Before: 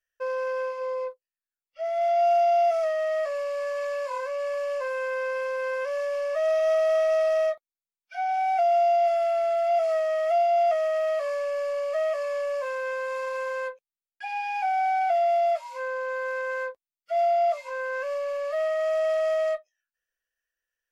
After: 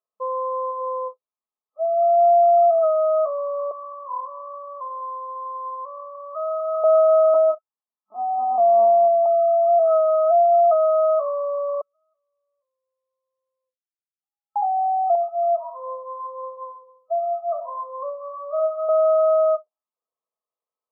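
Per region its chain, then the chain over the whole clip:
3.71–6.84 HPF 1200 Hz + doubler 27 ms -12 dB + echo 0.212 s -16.5 dB
7.34–9.26 elliptic high-pass 190 Hz + LPC vocoder at 8 kHz pitch kept
11.81–14.56 inverse Chebyshev high-pass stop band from 2100 Hz, stop band 50 dB + comb 1.5 ms, depth 92%
15.15–18.89 feedback echo 66 ms, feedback 58%, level -8 dB + cascading flanger rising 1.9 Hz
whole clip: FFT band-pass 200–1300 Hz; tilt shelf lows -7.5 dB, about 790 Hz; comb 4.7 ms, depth 32%; gain +6.5 dB

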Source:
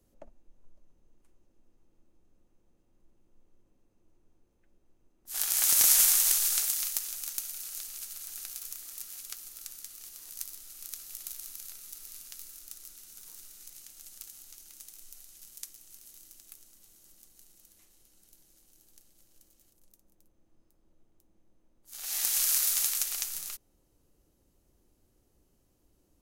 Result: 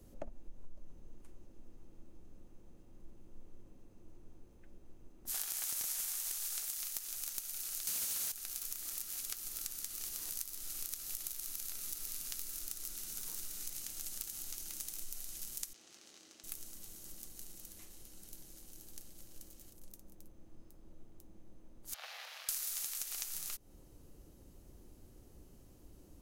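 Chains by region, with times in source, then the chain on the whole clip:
7.87–8.32 HPF 1200 Hz + sample leveller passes 5
15.73–16.44 HPF 300 Hz + air absorption 140 m
21.94–22.49 Chebyshev high-pass 480 Hz, order 10 + compressor, threshold -36 dBFS + air absorption 340 m
whole clip: low shelf 430 Hz +5.5 dB; compressor 8:1, threshold -44 dBFS; gain +7 dB

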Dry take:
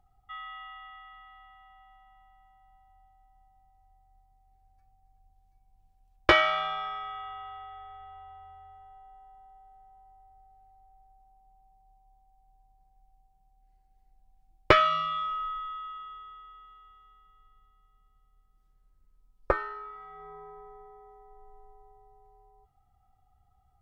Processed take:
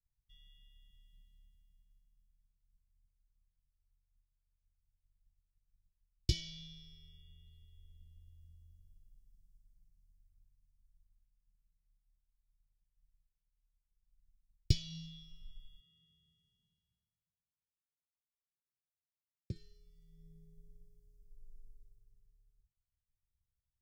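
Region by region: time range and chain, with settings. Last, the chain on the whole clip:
15.8–19.56 HPF 91 Hz 24 dB/oct + air absorption 63 m
whole clip: expander -51 dBFS; Chebyshev band-stop 190–5000 Hz, order 3; bell 1900 Hz -3.5 dB 0.26 oct; gain +3.5 dB

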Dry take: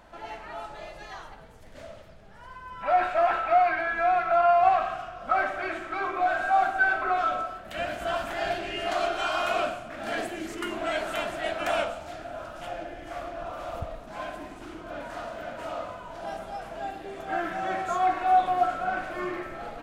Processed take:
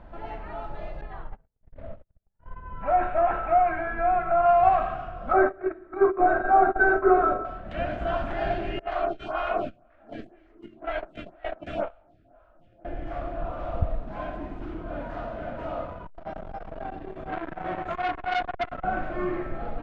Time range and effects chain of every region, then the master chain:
1.01–4.46 gate -45 dBFS, range -44 dB + air absorption 300 m
5.33–7.45 gate -30 dBFS, range -21 dB + resonant high shelf 2400 Hz -13 dB, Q 1.5 + small resonant body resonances 390/3800 Hz, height 17 dB
8.79–12.85 gate -30 dBFS, range -20 dB + photocell phaser 2 Hz
15.85–18.84 frequency shift -15 Hz + core saturation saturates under 2900 Hz
whole clip: LPF 3700 Hz 12 dB/oct; tilt -3 dB/oct

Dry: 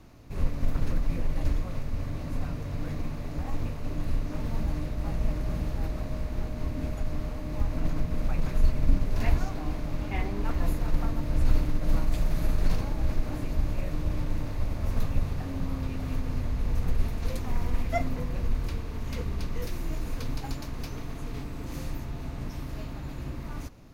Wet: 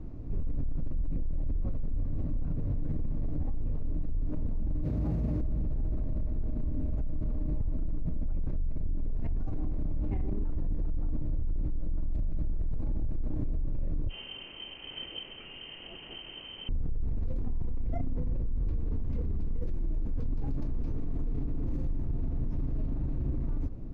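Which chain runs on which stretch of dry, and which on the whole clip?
4.83–5.41 HPF 66 Hz 24 dB/oct + high shelf 3800 Hz +8.5 dB
14.09–16.69 resonant low shelf 250 Hz -7 dB, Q 3 + inverted band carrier 3100 Hz
whole clip: tilt -4.5 dB/oct; limiter -18.5 dBFS; bell 340 Hz +7.5 dB 1.8 oct; gain -6.5 dB

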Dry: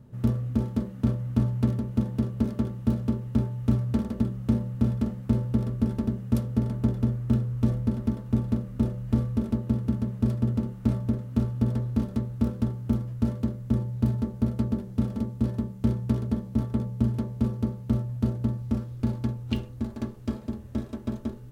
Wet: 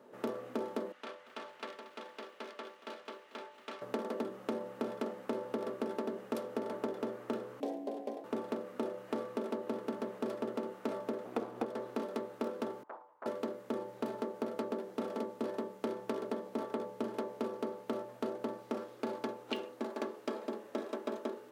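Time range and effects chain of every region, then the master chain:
0.92–3.82 band-pass 2900 Hz, Q 0.92 + lo-fi delay 0.231 s, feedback 55%, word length 10-bit, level -14 dB
7.6–8.24 fixed phaser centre 510 Hz, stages 4 + ring modulator 160 Hz + mismatched tape noise reduction decoder only
11.25–11.66 minimum comb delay 0.85 ms + low shelf 350 Hz +7 dB
12.83–13.26 band-pass 930 Hz, Q 8.3 + comb 6.5 ms, depth 39% + Doppler distortion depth 0.61 ms
whole clip: HPF 380 Hz 24 dB/oct; high shelf 3600 Hz -10 dB; compressor, threshold -40 dBFS; gain +7.5 dB

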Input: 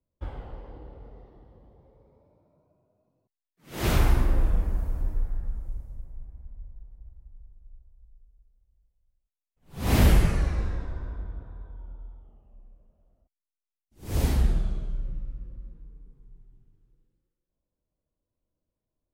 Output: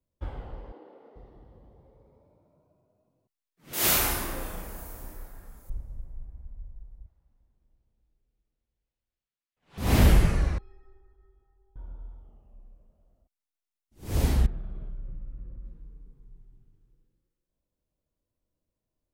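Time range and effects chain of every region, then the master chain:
0.72–1.16 HPF 270 Hz 24 dB/oct + high shelf 6900 Hz -10.5 dB
3.73–5.7 RIAA curve recording + doubler 32 ms -6 dB
7.06–9.78 LPF 2800 Hz + tilt +4 dB/oct + frequency-shifting echo 0.115 s, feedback 60%, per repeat +95 Hz, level -19 dB
10.58–11.76 air absorption 220 m + metallic resonator 380 Hz, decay 0.46 s, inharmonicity 0.03
14.46–15.66 LPF 2100 Hz + compressor 3:1, threshold -35 dBFS
whole clip: dry

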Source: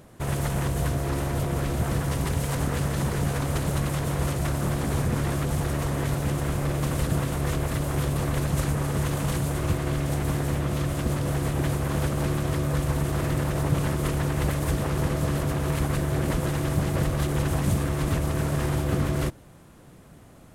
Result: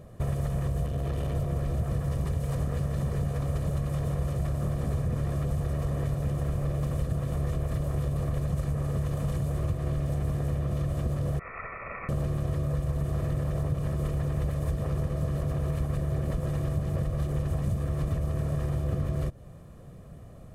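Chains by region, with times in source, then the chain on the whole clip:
0.86–1.36 bell 3100 Hz +7.5 dB 0.64 oct + core saturation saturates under 290 Hz
11.39–12.09 HPF 210 Hz 24 dB/oct + ring modulator 950 Hz + inverted band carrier 2600 Hz
whole clip: comb 1.7 ms, depth 52%; compressor, threshold -28 dBFS; tilt shelf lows +6 dB, about 770 Hz; gain -2.5 dB

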